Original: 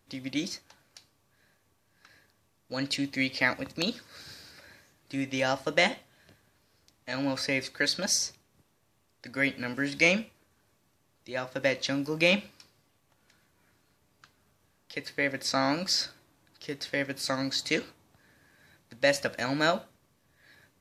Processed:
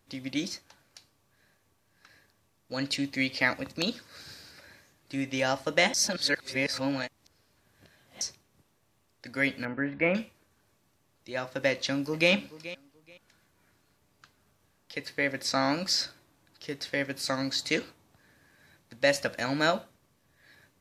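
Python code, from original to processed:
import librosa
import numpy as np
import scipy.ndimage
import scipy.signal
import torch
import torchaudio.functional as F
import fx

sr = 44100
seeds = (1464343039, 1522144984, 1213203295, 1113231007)

y = fx.lowpass(x, sr, hz=2000.0, slope=24, at=(9.65, 10.15))
y = fx.echo_throw(y, sr, start_s=11.7, length_s=0.61, ms=430, feedback_pct=20, wet_db=-16.5)
y = fx.edit(y, sr, fx.reverse_span(start_s=5.94, length_s=2.27), tone=tone)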